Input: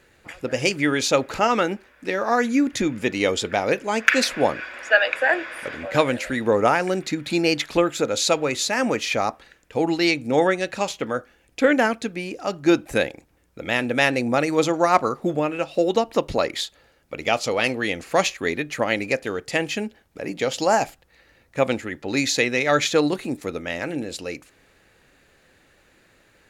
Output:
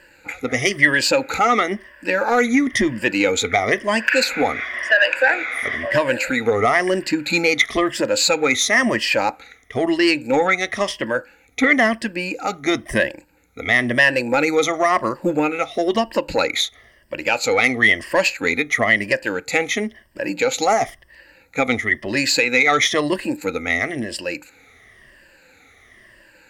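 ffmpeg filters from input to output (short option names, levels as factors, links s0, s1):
-af "afftfilt=real='re*pow(10,15/40*sin(2*PI*(1.3*log(max(b,1)*sr/1024/100)/log(2)-(-0.99)*(pts-256)/sr)))':imag='im*pow(10,15/40*sin(2*PI*(1.3*log(max(b,1)*sr/1024/100)/log(2)-(-0.99)*(pts-256)/sr)))':win_size=1024:overlap=0.75,alimiter=limit=0.398:level=0:latency=1:release=122,acontrast=63,equalizer=f=160:t=o:w=0.33:g=-8,equalizer=f=400:t=o:w=0.33:g=-3,equalizer=f=2000:t=o:w=0.33:g=10,volume=0.631"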